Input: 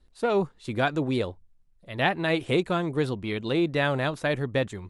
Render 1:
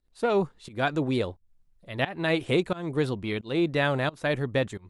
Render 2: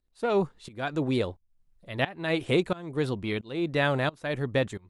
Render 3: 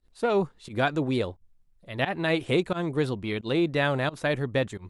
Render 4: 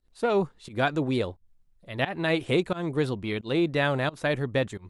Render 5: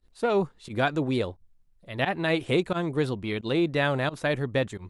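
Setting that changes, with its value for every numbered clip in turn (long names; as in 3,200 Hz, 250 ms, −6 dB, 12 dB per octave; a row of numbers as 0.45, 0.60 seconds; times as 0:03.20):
fake sidechain pumping, release: 253, 501, 105, 164, 70 milliseconds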